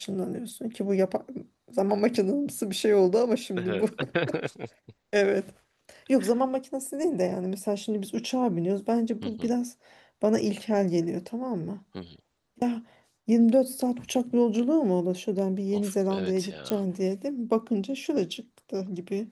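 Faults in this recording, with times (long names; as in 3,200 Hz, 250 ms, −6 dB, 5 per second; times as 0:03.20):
0:16.70: click −13 dBFS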